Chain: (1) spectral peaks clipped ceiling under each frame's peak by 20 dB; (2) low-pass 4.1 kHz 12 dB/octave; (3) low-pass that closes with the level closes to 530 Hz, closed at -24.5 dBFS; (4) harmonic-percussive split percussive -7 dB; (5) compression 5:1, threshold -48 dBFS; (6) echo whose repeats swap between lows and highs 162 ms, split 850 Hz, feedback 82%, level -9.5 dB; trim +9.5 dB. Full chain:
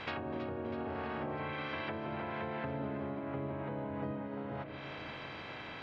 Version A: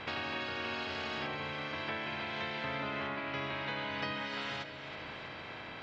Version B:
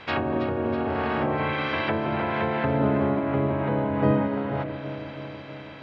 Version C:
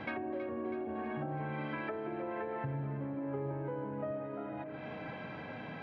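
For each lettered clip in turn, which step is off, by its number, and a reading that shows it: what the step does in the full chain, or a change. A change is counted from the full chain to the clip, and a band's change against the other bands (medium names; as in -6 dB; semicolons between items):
3, 4 kHz band +12.5 dB; 5, mean gain reduction 11.0 dB; 1, 4 kHz band -10.0 dB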